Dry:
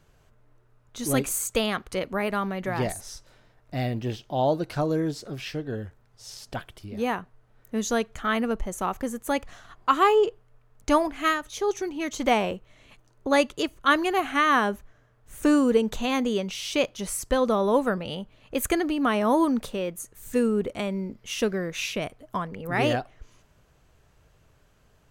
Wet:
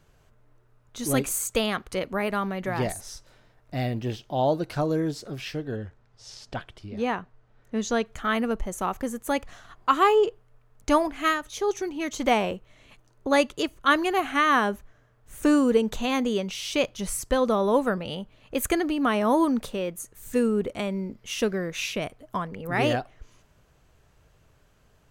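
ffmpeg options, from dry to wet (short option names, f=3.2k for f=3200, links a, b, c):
-filter_complex "[0:a]asettb=1/sr,asplit=3[a][b][c];[a]atrim=end=5.764[d];[b]atrim=start=5.76:end=8.06,asetpts=PTS-STARTPTS,afade=t=in:d=0.004:c=qsin,afade=t=out:st=2.296:d=0.004:c=qsin,lowpass=6.2k[e];[c]atrim=start=8.056[f];[d][e]acrossfade=d=0.004:c1=hsin:c2=qsin[g];[g][f]acrossfade=d=0.004:c1=qsin:c2=hsin,asettb=1/sr,asplit=3[h][i][j];[h]atrim=end=16.674[k];[i]atrim=start=16.67:end=17.21,asetpts=PTS-STARTPTS,afade=t=in:d=0.004:c=qsin,afade=t=out:st=0.536:d=0.004:c=qsin,asubboost=boost=9:cutoff=220[l];[j]atrim=start=17.206[m];[k][l]acrossfade=d=0.004:c1=hsin:c2=qsin[n];[n][m]acrossfade=d=0.004:c1=qsin:c2=hsin"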